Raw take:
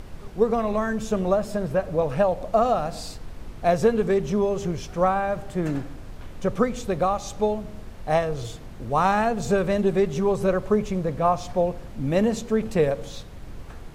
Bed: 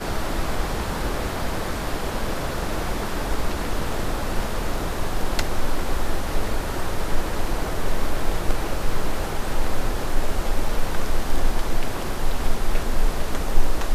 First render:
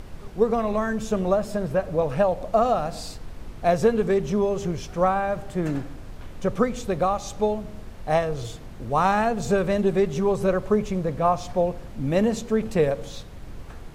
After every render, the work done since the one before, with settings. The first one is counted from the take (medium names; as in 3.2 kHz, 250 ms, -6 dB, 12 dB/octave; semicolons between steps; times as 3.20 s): no audible change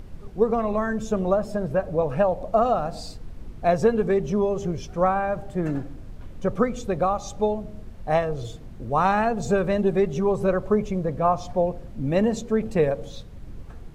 noise reduction 8 dB, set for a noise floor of -40 dBFS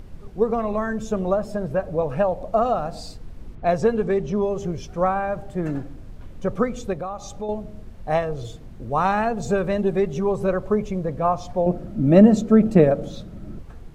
3.55–4.43 s: level-controlled noise filter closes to 2.3 kHz, open at -15 dBFS; 6.93–7.49 s: compression 2:1, threshold -32 dBFS; 11.66–13.59 s: small resonant body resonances 200/320/610/1300 Hz, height 12 dB, ringing for 35 ms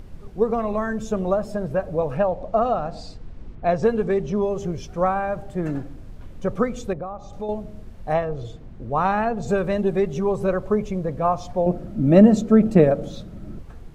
2.17–3.83 s: distance through air 80 m; 6.93–7.33 s: low-pass 1 kHz 6 dB/octave; 8.12–9.47 s: low-pass 2.2 kHz -> 3.3 kHz 6 dB/octave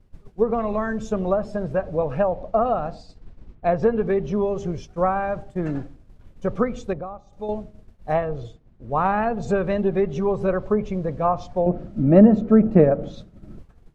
expander -28 dBFS; low-pass that closes with the level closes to 1.8 kHz, closed at -14.5 dBFS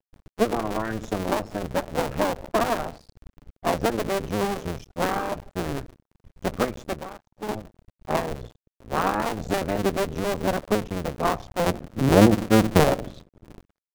cycle switcher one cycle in 2, muted; crossover distortion -47 dBFS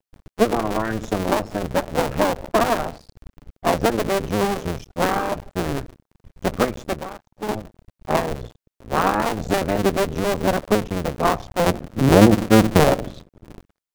trim +4.5 dB; peak limiter -1 dBFS, peak gain reduction 3 dB